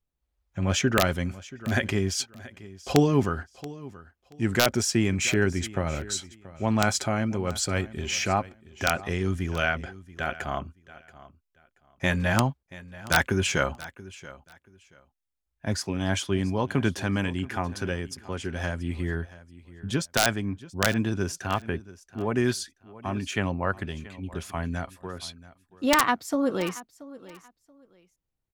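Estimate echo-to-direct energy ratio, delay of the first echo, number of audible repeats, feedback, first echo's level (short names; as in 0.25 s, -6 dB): -18.5 dB, 0.68 s, 2, 22%, -18.5 dB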